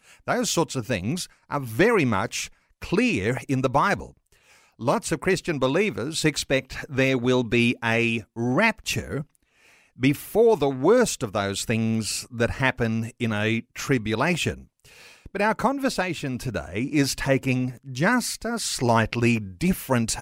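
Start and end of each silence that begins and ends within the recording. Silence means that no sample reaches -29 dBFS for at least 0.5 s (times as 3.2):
4.06–4.81
9.22–10.02
14.54–15.35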